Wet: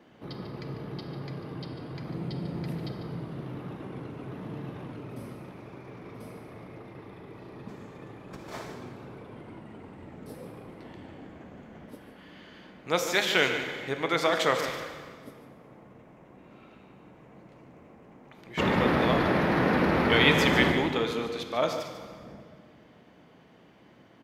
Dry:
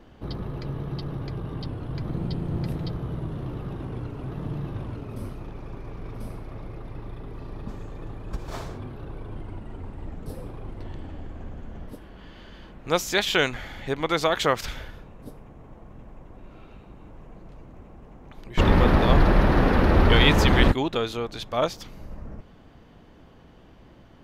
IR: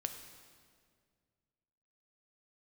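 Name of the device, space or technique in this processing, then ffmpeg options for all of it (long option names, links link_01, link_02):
PA in a hall: -filter_complex "[0:a]highpass=160,equalizer=frequency=2100:width_type=o:width=0.45:gain=5,aecho=1:1:146:0.282[link_01];[1:a]atrim=start_sample=2205[link_02];[link_01][link_02]afir=irnorm=-1:irlink=0,volume=-2.5dB"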